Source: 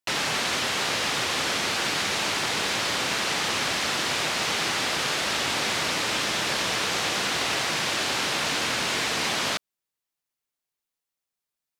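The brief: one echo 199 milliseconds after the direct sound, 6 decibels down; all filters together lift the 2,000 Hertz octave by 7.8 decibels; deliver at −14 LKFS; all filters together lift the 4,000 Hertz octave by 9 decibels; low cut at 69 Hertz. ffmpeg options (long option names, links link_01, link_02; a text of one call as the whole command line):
ffmpeg -i in.wav -af "highpass=69,equalizer=frequency=2000:width_type=o:gain=7,equalizer=frequency=4000:width_type=o:gain=9,aecho=1:1:199:0.501,volume=2dB" out.wav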